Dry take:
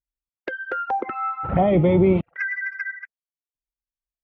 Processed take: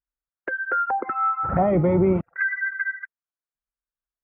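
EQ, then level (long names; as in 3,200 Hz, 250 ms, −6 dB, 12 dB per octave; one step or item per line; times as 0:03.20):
low-pass with resonance 1,500 Hz, resonance Q 2.6
high-frequency loss of the air 170 metres
−2.5 dB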